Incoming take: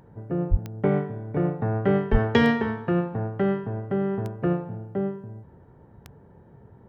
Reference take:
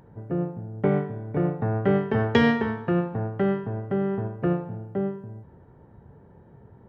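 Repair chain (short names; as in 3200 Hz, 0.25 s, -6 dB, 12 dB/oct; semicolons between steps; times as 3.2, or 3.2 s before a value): de-click; de-plosive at 0.5/2.11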